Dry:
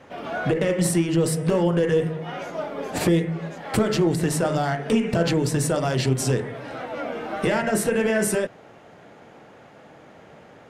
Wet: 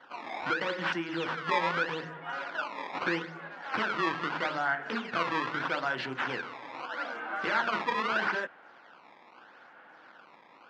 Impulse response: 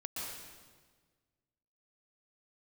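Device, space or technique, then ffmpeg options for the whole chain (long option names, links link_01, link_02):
circuit-bent sampling toy: -filter_complex "[0:a]asettb=1/sr,asplit=3[link_01][link_02][link_03];[link_01]atrim=end=1.494[link_04];[link_02]atrim=start=1.49:end=2.5,asetpts=PTS-STARTPTS,afade=type=in:duration=0.004:curve=qsin,afade=type=out:start_time=1.006:duration=0.004:curve=qsin,aecho=1:1:7.3:0.51,atrim=end_sample=44541[link_05];[link_03]atrim=start=2.496[link_06];[link_04][link_05]acrossfade=duration=0.004:curve1=hsin:curve2=qsin[link_07];[link_07][link_06]acrossfade=duration=0.004:curve1=qsin:curve2=hsin,acrusher=samples=17:mix=1:aa=0.000001:lfo=1:lforange=27.2:lforate=0.79,highpass=420,equalizer=frequency=430:width_type=q:width=4:gain=-9,equalizer=frequency=620:width_type=q:width=4:gain=-7,equalizer=frequency=1000:width_type=q:width=4:gain=4,equalizer=frequency=1500:width_type=q:width=4:gain=10,equalizer=frequency=3800:width_type=q:width=4:gain=-3,lowpass=frequency=4100:width=0.5412,lowpass=frequency=4100:width=1.3066,volume=-5dB"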